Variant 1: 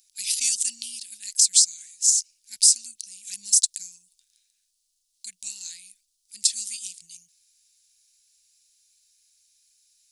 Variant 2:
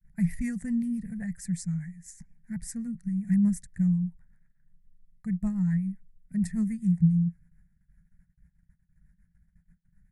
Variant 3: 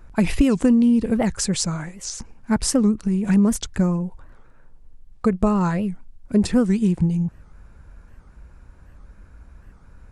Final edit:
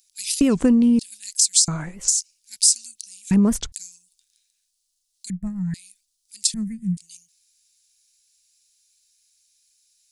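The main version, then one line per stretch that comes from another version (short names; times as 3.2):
1
0.41–0.99 from 3
1.68–2.08 from 3
3.31–3.72 from 3
5.3–5.74 from 2
6.54–6.97 from 2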